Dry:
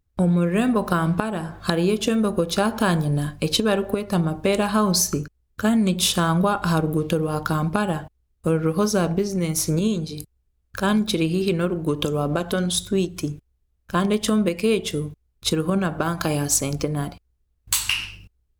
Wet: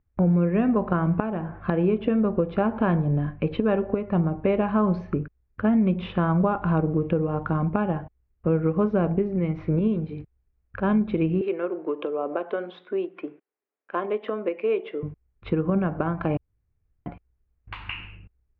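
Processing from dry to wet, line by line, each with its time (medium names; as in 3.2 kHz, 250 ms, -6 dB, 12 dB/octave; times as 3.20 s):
11.41–15.03 s: high-pass 340 Hz 24 dB/octave
16.37–17.06 s: room tone
whole clip: steep low-pass 2.4 kHz 36 dB/octave; dynamic bell 1.7 kHz, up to -6 dB, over -40 dBFS, Q 0.93; trim -1 dB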